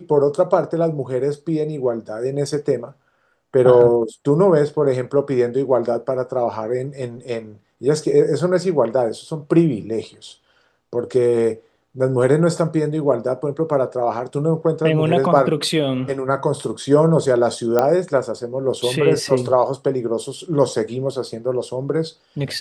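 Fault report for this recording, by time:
0:17.79: click −5 dBFS

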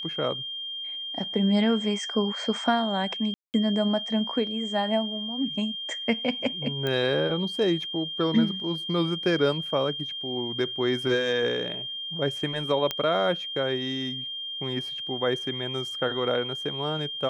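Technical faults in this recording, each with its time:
whistle 3,200 Hz −32 dBFS
0:03.34–0:03.54: drop-out 199 ms
0:06.87: click −16 dBFS
0:12.91: click −12 dBFS

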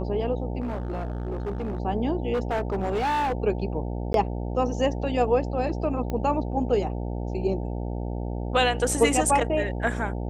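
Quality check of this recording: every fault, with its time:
mains buzz 60 Hz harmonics 15 −30 dBFS
0:00.60–0:01.80: clipping −26 dBFS
0:02.33–0:03.33: clipping −22 dBFS
0:04.13–0:04.14: drop-out 12 ms
0:06.10: click −18 dBFS

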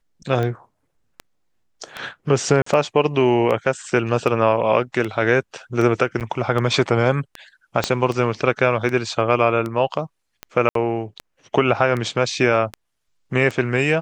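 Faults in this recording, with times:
scratch tick 78 rpm −14 dBFS
0:02.62–0:02.66: drop-out 44 ms
0:06.20–0:06.21: drop-out 8.4 ms
0:07.84: click −5 dBFS
0:10.69–0:10.75: drop-out 63 ms

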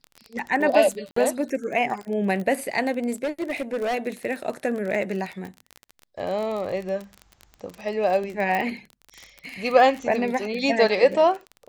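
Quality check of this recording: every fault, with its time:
surface crackle 30 per second −28 dBFS
0:01.11–0:01.16: drop-out 54 ms
0:03.24–0:03.95: clipping −22 dBFS
0:08.55: click −14 dBFS

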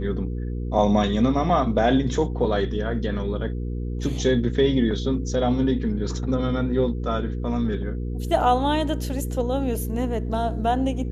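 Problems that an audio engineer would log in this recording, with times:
mains hum 60 Hz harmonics 8 −28 dBFS

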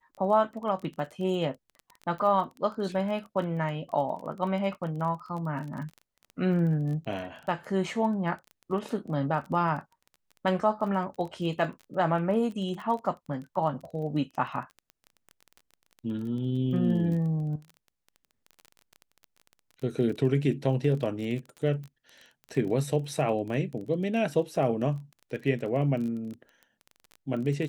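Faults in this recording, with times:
surface crackle 20 per second −36 dBFS

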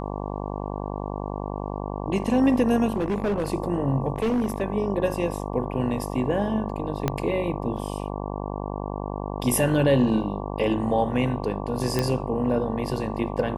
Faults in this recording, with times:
mains buzz 50 Hz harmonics 23 −31 dBFS
0:02.96–0:03.50: clipping −20.5 dBFS
0:04.16–0:04.63: clipping −19.5 dBFS
0:07.08: click −9 dBFS
0:11.99: click −9 dBFS

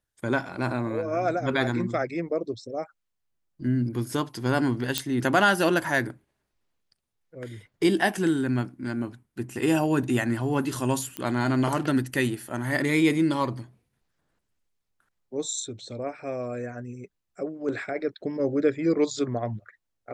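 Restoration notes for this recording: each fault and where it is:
0:04.98: click −7 dBFS
0:11.17: click −15 dBFS

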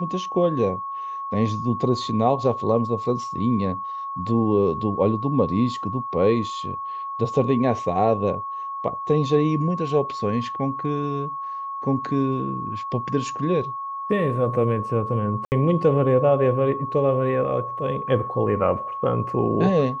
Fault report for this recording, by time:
whistle 1,100 Hz −28 dBFS
0:15.45–0:15.52: drop-out 69 ms

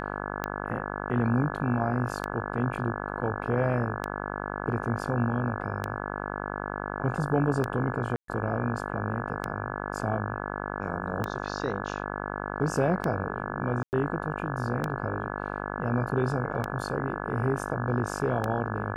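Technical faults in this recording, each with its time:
mains buzz 50 Hz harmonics 34 −34 dBFS
scratch tick 33 1/3 rpm −15 dBFS
0:08.16–0:08.28: drop-out 123 ms
0:13.83–0:13.93: drop-out 99 ms

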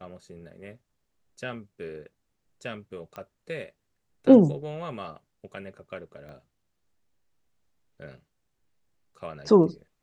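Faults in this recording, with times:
0:03.16: click −25 dBFS
0:06.29: click −36 dBFS

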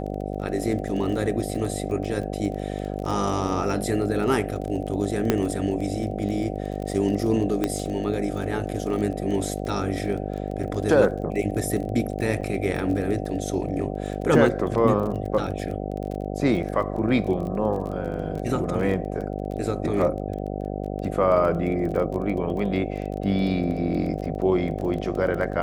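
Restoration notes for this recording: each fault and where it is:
mains buzz 50 Hz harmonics 15 −30 dBFS
surface crackle 22 per second −31 dBFS
0:05.30: click −6 dBFS
0:07.64: click −10 dBFS
0:12.41–0:12.42: drop-out 5.5 ms

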